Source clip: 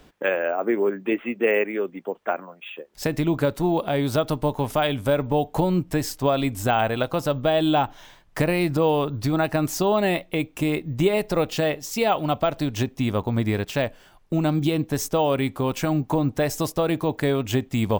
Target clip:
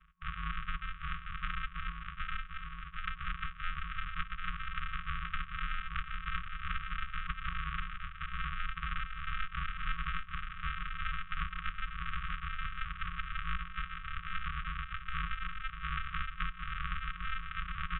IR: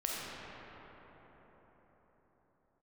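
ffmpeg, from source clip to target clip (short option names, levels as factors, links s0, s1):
-af "aemphasis=mode=production:type=50fm,aecho=1:1:759|1518|2277|3036|3795|4554|5313|6072:0.531|0.319|0.191|0.115|0.0688|0.0413|0.0248|0.0149,flanger=delay=16.5:depth=3.9:speed=0.27,aresample=8000,acrusher=samples=30:mix=1:aa=0.000001,aresample=44100,highpass=f=180:t=q:w=0.5412,highpass=f=180:t=q:w=1.307,lowpass=f=3000:t=q:w=0.5176,lowpass=f=3000:t=q:w=0.7071,lowpass=f=3000:t=q:w=1.932,afreqshift=-160,equalizer=f=125:t=o:w=1:g=-12,equalizer=f=1000:t=o:w=1:g=7,equalizer=f=2000:t=o:w=1:g=-5,acompressor=threshold=0.0158:ratio=2,afftfilt=real='re*(1-between(b*sr/4096,180,1100))':imag='im*(1-between(b*sr/4096,180,1100))':win_size=4096:overlap=0.75,volume=1.88"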